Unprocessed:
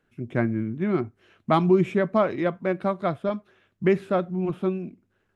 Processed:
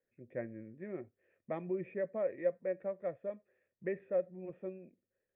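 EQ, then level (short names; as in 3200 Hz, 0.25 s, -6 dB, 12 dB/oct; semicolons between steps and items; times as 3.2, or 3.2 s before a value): vocal tract filter e; -3.5 dB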